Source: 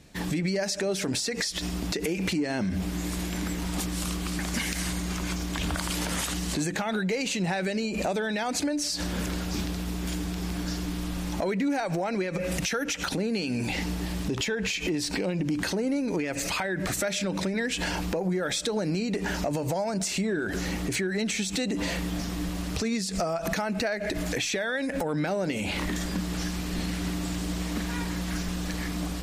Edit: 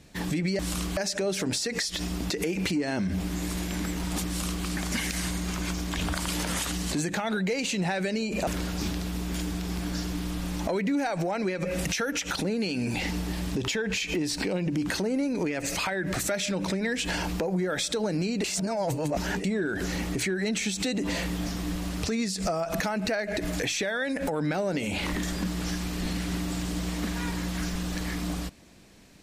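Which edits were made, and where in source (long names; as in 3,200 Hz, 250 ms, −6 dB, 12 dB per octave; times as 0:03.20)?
0:03.89–0:04.27: duplicate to 0:00.59
0:08.09–0:09.20: remove
0:19.17–0:20.17: reverse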